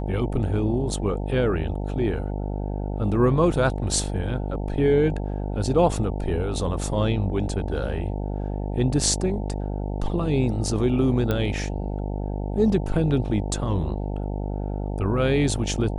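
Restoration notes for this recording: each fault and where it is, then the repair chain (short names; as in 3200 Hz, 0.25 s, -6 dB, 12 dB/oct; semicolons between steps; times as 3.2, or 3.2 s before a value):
buzz 50 Hz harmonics 18 -28 dBFS
11.31 pop -12 dBFS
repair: de-click; de-hum 50 Hz, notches 18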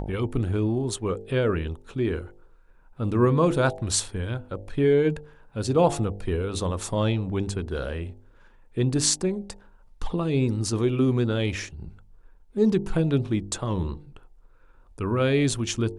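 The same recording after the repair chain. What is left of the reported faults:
none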